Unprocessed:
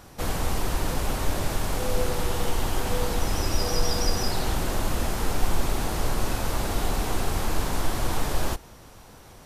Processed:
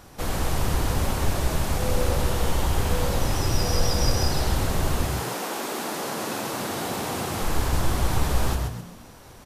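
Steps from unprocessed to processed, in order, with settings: 5.05–7.40 s: high-pass 320 Hz -> 83 Hz 24 dB/octave; frequency-shifting echo 129 ms, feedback 37%, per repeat +57 Hz, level -5 dB

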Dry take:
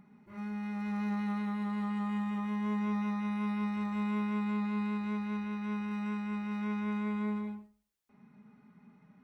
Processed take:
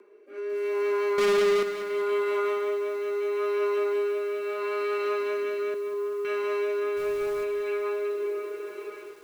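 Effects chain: frequency shift +200 Hz; echo that smears into a reverb 593 ms, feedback 51%, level -10 dB; compression 5:1, threshold -42 dBFS, peak gain reduction 13 dB; rotary cabinet horn 0.75 Hz; 1.18–1.63 s: waveshaping leveller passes 5; 5.74–6.25 s: two resonant band-passes 640 Hz, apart 1.3 oct; 6.96–7.43 s: added noise pink -67 dBFS; level rider gain up to 11.5 dB; bit-crushed delay 195 ms, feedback 55%, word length 9-bit, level -10.5 dB; trim +6.5 dB

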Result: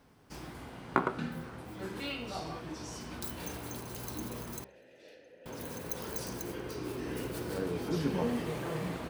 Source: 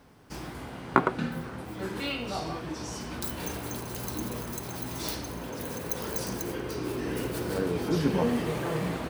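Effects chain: 4.64–5.46 s: vowel filter e; de-hum 65.84 Hz, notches 30; trim -5.5 dB

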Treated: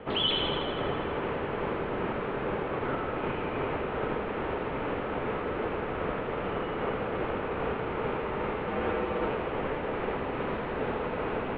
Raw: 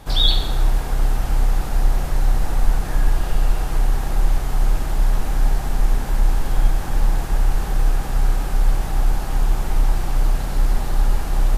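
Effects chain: 8.67–9.28 s: comb 7.2 ms, depth 89%; in parallel at +2 dB: peak limiter -13.5 dBFS, peak gain reduction 10 dB; on the sum: mistuned SSB -350 Hz 450–3300 Hz; distance through air 320 m; feedback echo behind a high-pass 81 ms, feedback 73%, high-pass 1.9 kHz, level -5 dB; trim -1.5 dB

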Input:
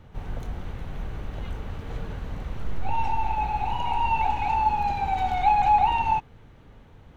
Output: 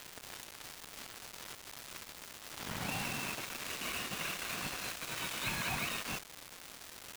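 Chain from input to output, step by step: spectral gate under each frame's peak -25 dB weak; peaking EQ 430 Hz -9 dB 1.6 oct; bit crusher 7-bit; crackle 570 per s -38 dBFS; trim +3.5 dB

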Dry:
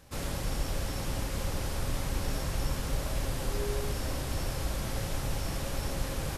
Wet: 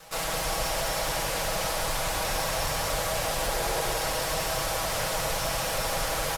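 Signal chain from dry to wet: comb filter that takes the minimum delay 6.2 ms; resonant low shelf 440 Hz -10.5 dB, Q 1.5; delay 182 ms -4 dB; in parallel at -0.5 dB: peak limiter -34 dBFS, peak gain reduction 9 dB; on the sum: hum notches 60/120 Hz; trim +5.5 dB

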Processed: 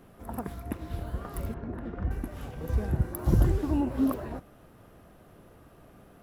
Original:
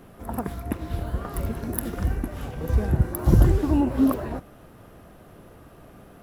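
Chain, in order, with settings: 1.54–2.11 s: low-pass 1.8 kHz 12 dB/octave; trim -6 dB

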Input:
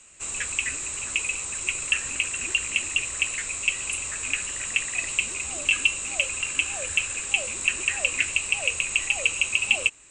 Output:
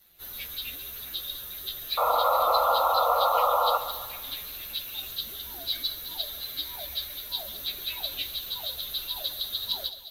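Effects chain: frequency axis rescaled in octaves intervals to 116%; in parallel at -9.5 dB: integer overflow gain 13.5 dB; on the sum: painted sound noise, 1.97–3.78 s, 470–1400 Hz -18 dBFS; two-band feedback delay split 2.9 kHz, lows 141 ms, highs 212 ms, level -12.5 dB; trim -5.5 dB

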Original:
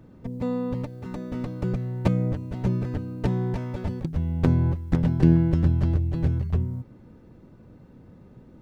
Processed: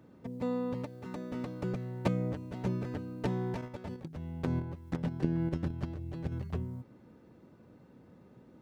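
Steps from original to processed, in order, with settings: high-pass 240 Hz 6 dB/octave; 3.61–6.32 s: level held to a coarse grid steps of 9 dB; trim -3.5 dB

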